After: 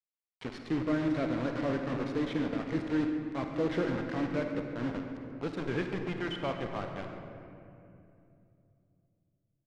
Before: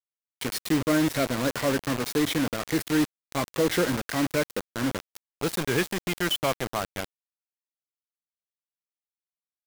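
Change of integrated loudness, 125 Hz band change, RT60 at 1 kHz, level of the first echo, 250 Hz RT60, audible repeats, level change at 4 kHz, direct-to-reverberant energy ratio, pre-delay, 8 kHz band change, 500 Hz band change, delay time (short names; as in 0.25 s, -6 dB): -6.5 dB, -5.0 dB, 2.4 s, -14.5 dB, 3.8 s, 1, -14.5 dB, 3.5 dB, 37 ms, under -25 dB, -6.0 dB, 0.138 s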